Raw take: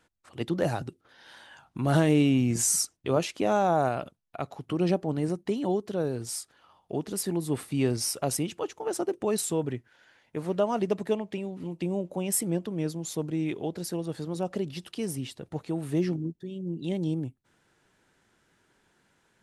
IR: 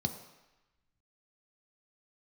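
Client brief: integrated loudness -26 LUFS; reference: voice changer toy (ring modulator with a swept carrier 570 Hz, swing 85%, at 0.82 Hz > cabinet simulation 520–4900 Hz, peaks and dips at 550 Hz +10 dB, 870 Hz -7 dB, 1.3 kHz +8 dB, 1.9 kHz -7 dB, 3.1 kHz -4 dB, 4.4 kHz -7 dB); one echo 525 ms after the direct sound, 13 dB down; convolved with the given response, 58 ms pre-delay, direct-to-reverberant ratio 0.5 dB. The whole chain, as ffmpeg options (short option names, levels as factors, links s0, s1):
-filter_complex "[0:a]aecho=1:1:525:0.224,asplit=2[s0][s1];[1:a]atrim=start_sample=2205,adelay=58[s2];[s1][s2]afir=irnorm=-1:irlink=0,volume=0.668[s3];[s0][s3]amix=inputs=2:normalize=0,aeval=exprs='val(0)*sin(2*PI*570*n/s+570*0.85/0.82*sin(2*PI*0.82*n/s))':c=same,highpass=520,equalizer=f=550:t=q:w=4:g=10,equalizer=f=870:t=q:w=4:g=-7,equalizer=f=1300:t=q:w=4:g=8,equalizer=f=1900:t=q:w=4:g=-7,equalizer=f=3100:t=q:w=4:g=-4,equalizer=f=4400:t=q:w=4:g=-7,lowpass=f=4900:w=0.5412,lowpass=f=4900:w=1.3066,volume=0.75"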